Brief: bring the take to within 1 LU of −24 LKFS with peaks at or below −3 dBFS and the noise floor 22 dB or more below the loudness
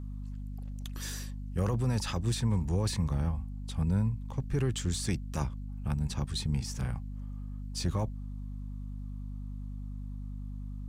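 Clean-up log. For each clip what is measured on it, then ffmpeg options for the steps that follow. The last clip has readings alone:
mains hum 50 Hz; hum harmonics up to 250 Hz; level of the hum −36 dBFS; integrated loudness −34.5 LKFS; sample peak −19.0 dBFS; target loudness −24.0 LKFS
→ -af "bandreject=frequency=50:width_type=h:width=6,bandreject=frequency=100:width_type=h:width=6,bandreject=frequency=150:width_type=h:width=6,bandreject=frequency=200:width_type=h:width=6,bandreject=frequency=250:width_type=h:width=6"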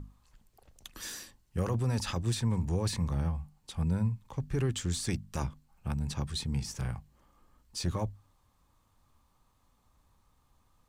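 mains hum none found; integrated loudness −34.0 LKFS; sample peak −20.0 dBFS; target loudness −24.0 LKFS
→ -af "volume=10dB"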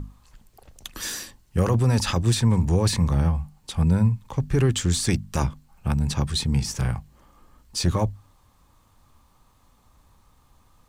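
integrated loudness −24.0 LKFS; sample peak −10.0 dBFS; background noise floor −60 dBFS

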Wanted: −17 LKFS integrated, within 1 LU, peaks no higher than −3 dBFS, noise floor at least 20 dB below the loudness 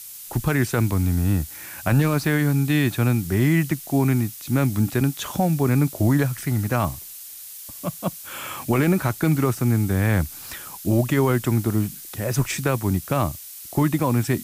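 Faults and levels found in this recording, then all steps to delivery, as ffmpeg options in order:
background noise floor −39 dBFS; target noise floor −43 dBFS; integrated loudness −22.5 LKFS; sample peak −9.0 dBFS; target loudness −17.0 LKFS
→ -af "afftdn=noise_reduction=6:noise_floor=-39"
-af "volume=5.5dB"

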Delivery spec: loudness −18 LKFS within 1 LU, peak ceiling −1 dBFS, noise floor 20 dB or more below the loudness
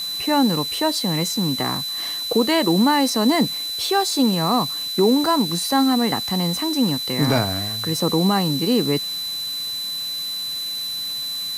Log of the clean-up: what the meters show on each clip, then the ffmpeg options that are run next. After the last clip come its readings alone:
interfering tone 4,000 Hz; level of the tone −25 dBFS; background noise floor −28 dBFS; target noise floor −40 dBFS; integrated loudness −20.0 LKFS; sample peak −6.5 dBFS; target loudness −18.0 LKFS
→ -af "bandreject=frequency=4000:width=30"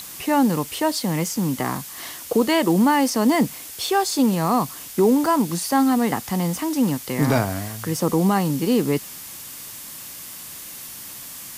interfering tone none found; background noise floor −37 dBFS; target noise floor −41 dBFS
→ -af "afftdn=noise_reduction=6:noise_floor=-37"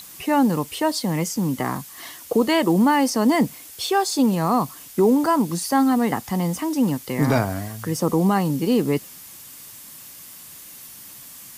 background noise floor −42 dBFS; integrated loudness −21.0 LKFS; sample peak −7.5 dBFS; target loudness −18.0 LKFS
→ -af "volume=3dB"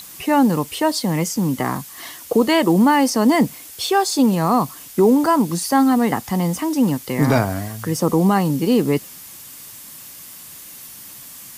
integrated loudness −18.0 LKFS; sample peak −4.5 dBFS; background noise floor −39 dBFS

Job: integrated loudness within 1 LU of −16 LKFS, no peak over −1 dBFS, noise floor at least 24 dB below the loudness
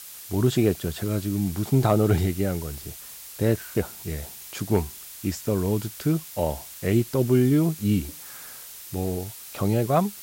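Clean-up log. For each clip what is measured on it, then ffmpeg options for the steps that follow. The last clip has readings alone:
background noise floor −42 dBFS; target noise floor −49 dBFS; integrated loudness −25.0 LKFS; sample peak −9.0 dBFS; target loudness −16.0 LKFS
→ -af "afftdn=noise_reduction=7:noise_floor=-42"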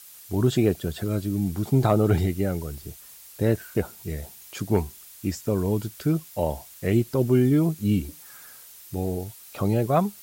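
background noise floor −47 dBFS; target noise floor −49 dBFS
→ -af "afftdn=noise_reduction=6:noise_floor=-47"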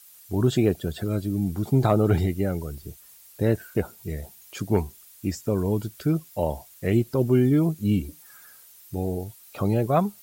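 background noise floor −51 dBFS; integrated loudness −25.0 LKFS; sample peak −9.0 dBFS; target loudness −16.0 LKFS
→ -af "volume=9dB,alimiter=limit=-1dB:level=0:latency=1"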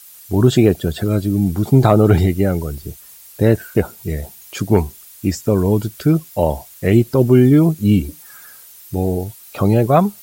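integrated loudness −16.5 LKFS; sample peak −1.0 dBFS; background noise floor −42 dBFS

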